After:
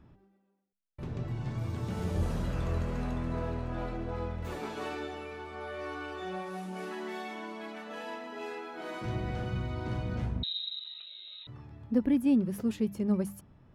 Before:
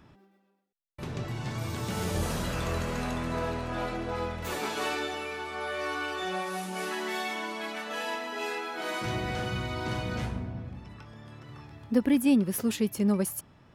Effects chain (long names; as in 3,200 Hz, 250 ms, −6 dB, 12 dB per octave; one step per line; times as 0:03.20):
spectral tilt −2.5 dB per octave
mains-hum notches 50/100/150/200 Hz
0:10.43–0:11.47: voice inversion scrambler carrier 3,900 Hz
level −7 dB